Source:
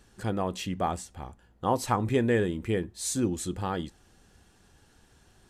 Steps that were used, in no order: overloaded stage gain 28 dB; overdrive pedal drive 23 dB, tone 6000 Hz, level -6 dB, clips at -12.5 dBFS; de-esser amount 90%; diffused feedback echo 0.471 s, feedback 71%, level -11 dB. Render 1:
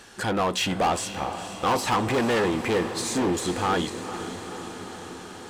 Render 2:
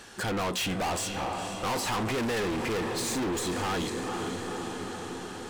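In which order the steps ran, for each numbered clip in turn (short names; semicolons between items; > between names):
de-esser > overloaded stage > overdrive pedal > diffused feedback echo; de-esser > overdrive pedal > diffused feedback echo > overloaded stage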